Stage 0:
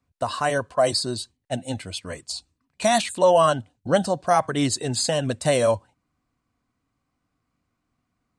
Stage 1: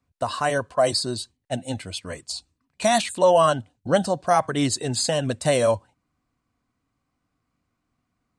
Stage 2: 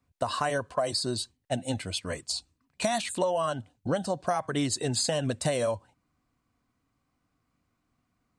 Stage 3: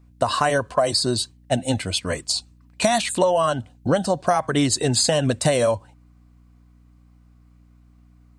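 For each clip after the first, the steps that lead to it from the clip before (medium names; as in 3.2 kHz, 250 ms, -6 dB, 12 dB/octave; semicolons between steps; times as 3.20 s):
no audible change
compression 12:1, threshold -24 dBFS, peak gain reduction 12 dB
hum 60 Hz, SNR 29 dB; trim +8.5 dB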